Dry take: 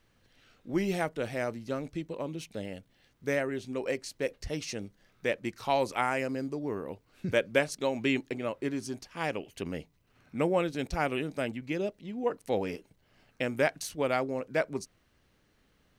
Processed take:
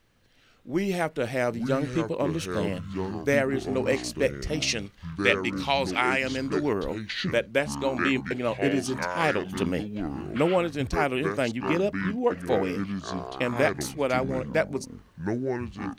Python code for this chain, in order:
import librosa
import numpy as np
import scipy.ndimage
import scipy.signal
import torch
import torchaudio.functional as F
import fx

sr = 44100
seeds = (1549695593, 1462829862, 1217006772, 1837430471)

y = fx.peak_eq(x, sr, hz=3100.0, db=12.0, octaves=2.3, at=(4.62, 6.73))
y = fx.rider(y, sr, range_db=5, speed_s=0.5)
y = fx.echo_pitch(y, sr, ms=558, semitones=-6, count=2, db_per_echo=-6.0)
y = y * librosa.db_to_amplitude(3.5)